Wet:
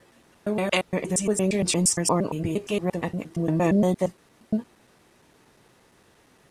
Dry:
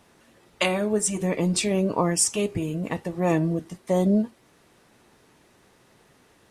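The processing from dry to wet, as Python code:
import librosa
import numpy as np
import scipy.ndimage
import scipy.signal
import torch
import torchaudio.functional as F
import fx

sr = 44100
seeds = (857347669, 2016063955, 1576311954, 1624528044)

y = fx.block_reorder(x, sr, ms=116.0, group=4)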